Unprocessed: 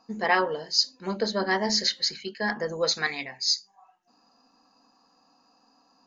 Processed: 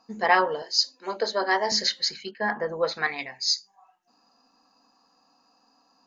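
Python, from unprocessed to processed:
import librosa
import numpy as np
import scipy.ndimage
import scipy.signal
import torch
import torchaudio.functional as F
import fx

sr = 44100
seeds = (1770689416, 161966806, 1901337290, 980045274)

y = fx.lowpass(x, sr, hz=fx.line((2.3, 2100.0), (3.17, 3000.0)), slope=12, at=(2.3, 3.17), fade=0.02)
y = fx.dynamic_eq(y, sr, hz=840.0, q=0.74, threshold_db=-38.0, ratio=4.0, max_db=5)
y = fx.highpass(y, sr, hz=290.0, slope=24, at=(0.62, 1.72))
y = fx.low_shelf(y, sr, hz=470.0, db=-3.5)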